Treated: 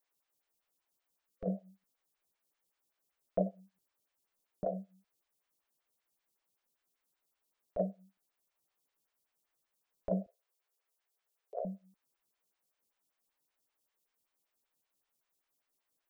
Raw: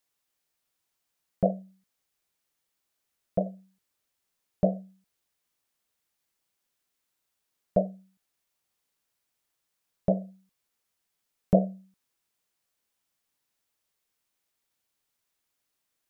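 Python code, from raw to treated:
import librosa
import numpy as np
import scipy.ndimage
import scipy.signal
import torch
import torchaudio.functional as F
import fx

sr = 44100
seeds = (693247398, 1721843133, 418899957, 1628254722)

y = fx.over_compress(x, sr, threshold_db=-24.0, ratio=-0.5)
y = fx.spec_box(y, sr, start_s=1.27, length_s=0.24, low_hz=530.0, high_hz=1100.0, gain_db=-9)
y = fx.cheby1_highpass(y, sr, hz=360.0, order=8, at=(10.26, 11.65))
y = fx.stagger_phaser(y, sr, hz=5.2)
y = y * 10.0 ** (-3.0 / 20.0)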